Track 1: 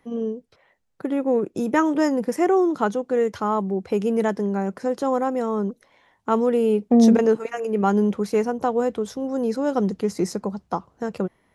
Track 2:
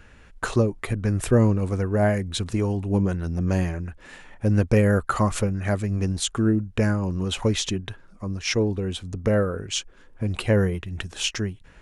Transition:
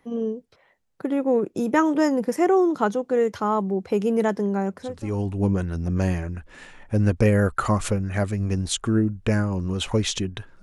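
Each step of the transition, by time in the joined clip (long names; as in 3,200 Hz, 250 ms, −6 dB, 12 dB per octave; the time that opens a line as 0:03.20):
track 1
0:04.94: continue with track 2 from 0:02.45, crossfade 0.54 s quadratic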